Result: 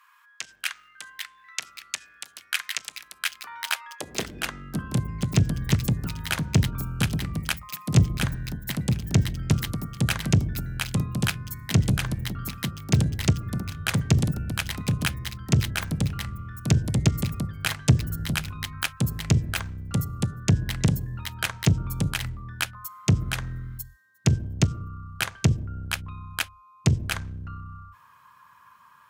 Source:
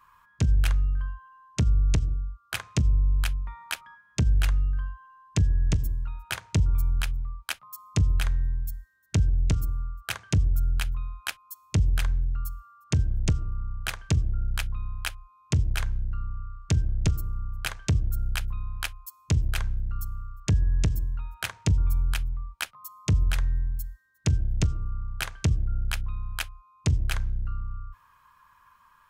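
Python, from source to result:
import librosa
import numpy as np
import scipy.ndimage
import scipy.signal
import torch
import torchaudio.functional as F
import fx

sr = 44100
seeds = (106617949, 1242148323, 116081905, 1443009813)

y = fx.cheby_harmonics(x, sr, harmonics=(6,), levels_db=(-28,), full_scale_db=-12.5)
y = fx.echo_pitch(y, sr, ms=685, semitones=4, count=3, db_per_echo=-6.0)
y = fx.filter_sweep_highpass(y, sr, from_hz=1800.0, to_hz=130.0, start_s=3.13, end_s=5.05, q=1.2)
y = y * 10.0 ** (4.5 / 20.0)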